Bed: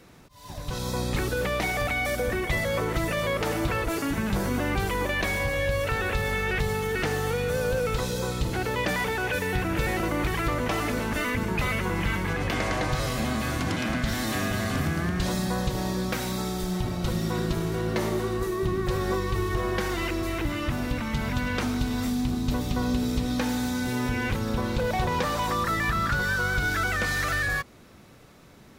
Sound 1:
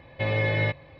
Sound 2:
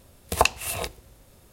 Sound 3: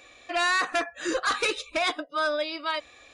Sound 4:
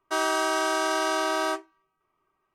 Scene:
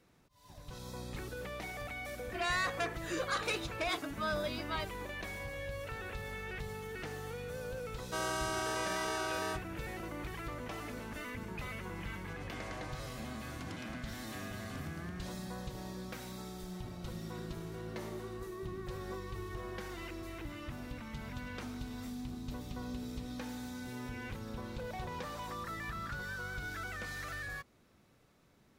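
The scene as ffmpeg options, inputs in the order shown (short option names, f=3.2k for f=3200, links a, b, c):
-filter_complex "[0:a]volume=-15.5dB[a];[4:a]highshelf=f=4.6k:g=4.5[b];[3:a]atrim=end=3.13,asetpts=PTS-STARTPTS,volume=-9.5dB,afade=t=in:d=0.004:c=hsin,afade=t=out:st=3.126:d=0.004:c=hsin,adelay=2050[c];[b]atrim=end=2.54,asetpts=PTS-STARTPTS,volume=-11.5dB,afade=t=in:d=0.004:c=hsin,afade=t=out:st=2.536:d=0.004:c=hsin,adelay=8010[d];[a][c][d]amix=inputs=3:normalize=0"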